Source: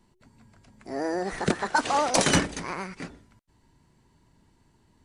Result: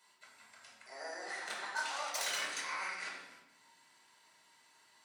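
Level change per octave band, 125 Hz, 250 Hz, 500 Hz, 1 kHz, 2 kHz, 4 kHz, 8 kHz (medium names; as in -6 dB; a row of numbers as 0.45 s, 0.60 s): under -35 dB, -30.5 dB, -19.0 dB, -14.0 dB, -7.5 dB, -9.0 dB, -11.0 dB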